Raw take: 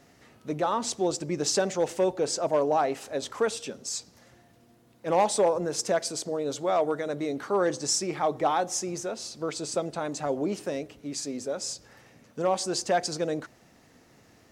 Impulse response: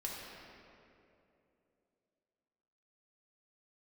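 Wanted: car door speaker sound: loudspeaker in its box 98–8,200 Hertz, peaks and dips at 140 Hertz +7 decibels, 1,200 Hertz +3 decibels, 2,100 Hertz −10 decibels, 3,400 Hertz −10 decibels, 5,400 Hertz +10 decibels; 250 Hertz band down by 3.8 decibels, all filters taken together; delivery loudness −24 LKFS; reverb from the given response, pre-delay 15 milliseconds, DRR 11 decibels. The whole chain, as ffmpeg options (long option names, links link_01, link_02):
-filter_complex "[0:a]equalizer=frequency=250:width_type=o:gain=-6.5,asplit=2[link_01][link_02];[1:a]atrim=start_sample=2205,adelay=15[link_03];[link_02][link_03]afir=irnorm=-1:irlink=0,volume=-12dB[link_04];[link_01][link_04]amix=inputs=2:normalize=0,highpass=98,equalizer=frequency=140:width_type=q:width=4:gain=7,equalizer=frequency=1200:width_type=q:width=4:gain=3,equalizer=frequency=2100:width_type=q:width=4:gain=-10,equalizer=frequency=3400:width_type=q:width=4:gain=-10,equalizer=frequency=5400:width_type=q:width=4:gain=10,lowpass=frequency=8200:width=0.5412,lowpass=frequency=8200:width=1.3066,volume=3.5dB"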